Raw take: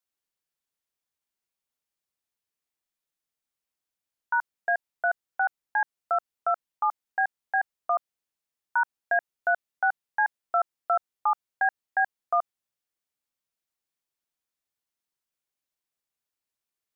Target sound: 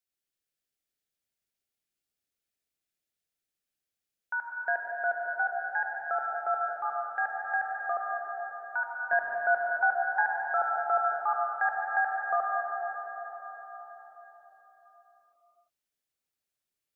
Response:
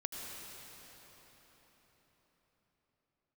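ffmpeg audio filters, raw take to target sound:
-filter_complex "[0:a]asetnsamples=n=441:p=0,asendcmd='9.13 equalizer g 3;10.21 equalizer g -7',equalizer=f=1k:t=o:w=0.4:g=-14[a];[1:a]atrim=start_sample=2205[b];[a][b]afir=irnorm=-1:irlink=0"

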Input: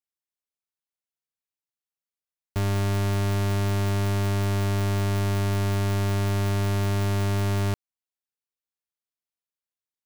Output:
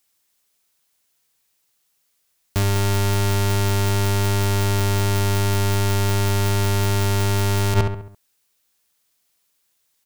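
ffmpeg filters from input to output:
-filter_complex "[0:a]highshelf=f=2.8k:g=7.5,asplit=2[a][b];[b]adelay=68,lowpass=f=2.5k:p=1,volume=-8dB,asplit=2[c][d];[d]adelay=68,lowpass=f=2.5k:p=1,volume=0.48,asplit=2[e][f];[f]adelay=68,lowpass=f=2.5k:p=1,volume=0.48,asplit=2[g][h];[h]adelay=68,lowpass=f=2.5k:p=1,volume=0.48,asplit=2[i][j];[j]adelay=68,lowpass=f=2.5k:p=1,volume=0.48,asplit=2[k][l];[l]adelay=68,lowpass=f=2.5k:p=1,volume=0.48[m];[c][e][g][i][k][m]amix=inputs=6:normalize=0[n];[a][n]amix=inputs=2:normalize=0,alimiter=level_in=27dB:limit=-1dB:release=50:level=0:latency=1,volume=-8dB"

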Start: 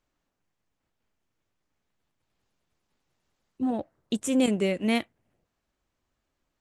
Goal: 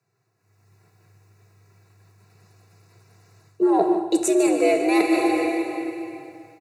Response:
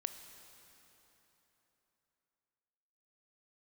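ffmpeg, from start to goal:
-filter_complex "[1:a]atrim=start_sample=2205,asetrate=57330,aresample=44100[a];[0:a][a]afir=irnorm=-1:irlink=0,areverse,acompressor=threshold=-39dB:ratio=10,areverse,asuperstop=centerf=3100:order=4:qfactor=3,aecho=1:1:3.2:0.66,afreqshift=100,asplit=2[b][c];[c]aecho=0:1:150:0.282[d];[b][d]amix=inputs=2:normalize=0,dynaudnorm=f=360:g=3:m=16.5dB,volume=5.5dB"

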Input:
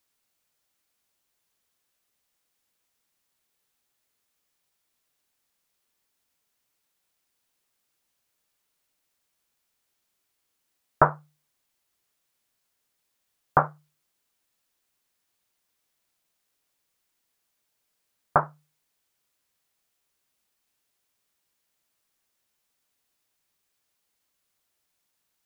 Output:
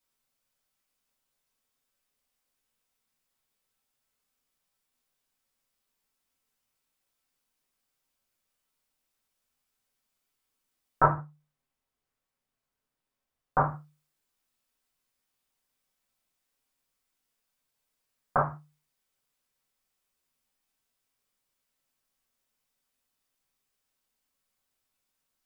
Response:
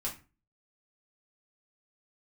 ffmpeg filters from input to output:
-filter_complex "[0:a]asplit=3[a][b][c];[a]afade=t=out:st=11.11:d=0.02[d];[b]highshelf=f=2.4k:g=-9.5,afade=t=in:st=11.11:d=0.02,afade=t=out:st=13.58:d=0.02[e];[c]afade=t=in:st=13.58:d=0.02[f];[d][e][f]amix=inputs=3:normalize=0[g];[1:a]atrim=start_sample=2205,afade=t=out:st=0.23:d=0.01,atrim=end_sample=10584[h];[g][h]afir=irnorm=-1:irlink=0,volume=-5.5dB"

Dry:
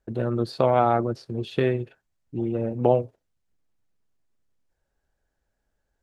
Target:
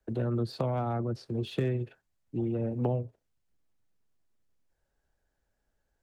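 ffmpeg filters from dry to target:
-filter_complex "[0:a]acrossover=split=220[a][b];[b]acompressor=threshold=-30dB:ratio=5[c];[a][c]amix=inputs=2:normalize=0,acrossover=split=110|610|1200[d][e][f][g];[g]asoftclip=type=hard:threshold=-37dB[h];[d][e][f][h]amix=inputs=4:normalize=0,volume=-1.5dB"

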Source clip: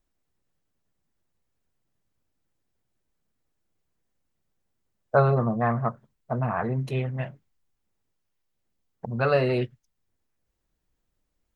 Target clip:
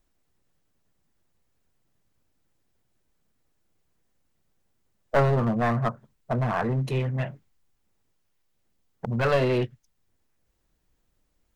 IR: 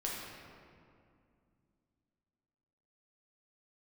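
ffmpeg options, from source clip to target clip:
-filter_complex "[0:a]asplit=2[a][b];[b]acompressor=threshold=-33dB:ratio=5,volume=-1dB[c];[a][c]amix=inputs=2:normalize=0,aeval=exprs='clip(val(0),-1,0.0841)':c=same"

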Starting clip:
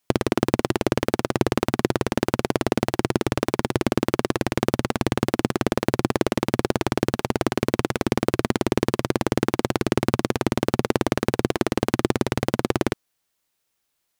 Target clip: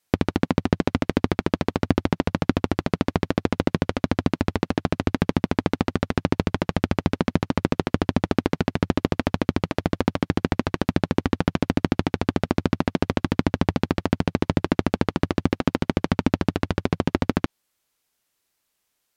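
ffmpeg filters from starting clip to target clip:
-filter_complex "[0:a]acrossover=split=7400[a][b];[b]acompressor=threshold=-46dB:ratio=4:attack=1:release=60[c];[a][c]amix=inputs=2:normalize=0,asetrate=32667,aresample=44100"

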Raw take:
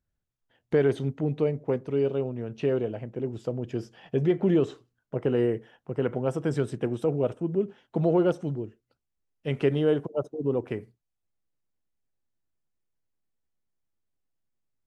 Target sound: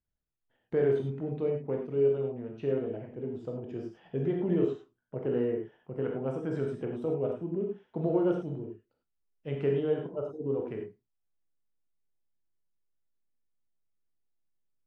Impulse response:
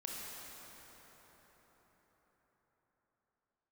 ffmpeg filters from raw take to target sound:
-filter_complex "[0:a]lowpass=f=2k:p=1[a];[1:a]atrim=start_sample=2205,atrim=end_sample=6615,asetrate=57330,aresample=44100[b];[a][b]afir=irnorm=-1:irlink=0"

